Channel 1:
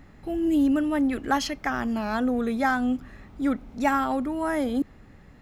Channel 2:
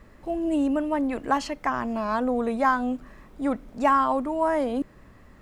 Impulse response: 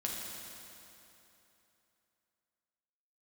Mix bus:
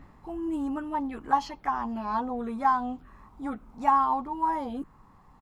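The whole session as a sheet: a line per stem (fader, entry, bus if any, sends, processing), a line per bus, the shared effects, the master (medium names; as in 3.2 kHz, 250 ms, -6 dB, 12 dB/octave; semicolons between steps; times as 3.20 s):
-0.5 dB, 0.00 s, no send, auto duck -9 dB, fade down 0.30 s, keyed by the second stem
+0.5 dB, 13 ms, no send, resonant low shelf 650 Hz -7 dB, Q 3; static phaser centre 400 Hz, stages 8; touch-sensitive phaser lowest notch 320 Hz, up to 1.8 kHz, full sweep at -25.5 dBFS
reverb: none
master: treble shelf 3.9 kHz -10 dB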